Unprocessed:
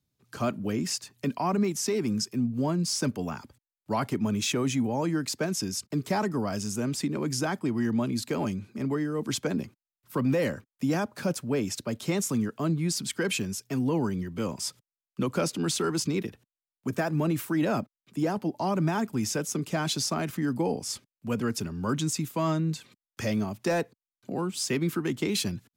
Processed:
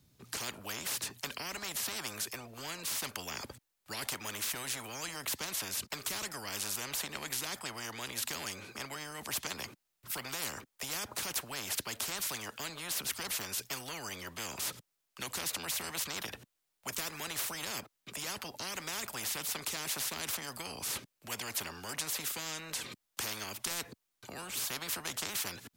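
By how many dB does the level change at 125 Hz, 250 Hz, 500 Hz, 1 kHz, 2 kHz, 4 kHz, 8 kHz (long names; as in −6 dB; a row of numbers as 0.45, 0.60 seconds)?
−20.0, −22.0, −16.5, −9.0, −2.5, −1.5, −1.5 decibels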